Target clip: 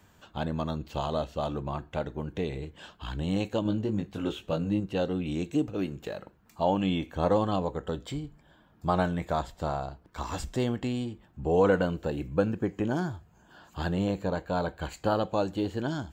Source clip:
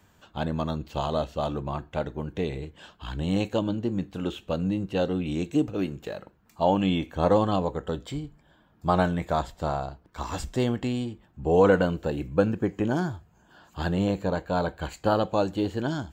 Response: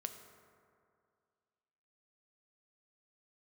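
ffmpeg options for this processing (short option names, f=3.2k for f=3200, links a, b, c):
-filter_complex "[0:a]asplit=2[a][b];[b]acompressor=threshold=-36dB:ratio=6,volume=-2dB[c];[a][c]amix=inputs=2:normalize=0,asettb=1/sr,asplit=3[d][e][f];[d]atrim=end=3.634[g];[e]atrim=start=3.63:end=4.8,asetpts=PTS-STARTPTS,afade=t=in:d=0.004:c=qsin,afade=t=out:st=1.166:d=0.004:c=qsin,asplit=2[h][i];[i]adelay=19,volume=-4dB[j];[h][j]amix=inputs=2:normalize=0,atrim=end_sample=51597[k];[f]atrim=start=4.796[l];[g][k]acrossfade=d=0.004:c1=hsin:c2=qsin[m];[m][l]acrossfade=d=0.004:c1=qsin:c2=hsin,volume=-4.5dB"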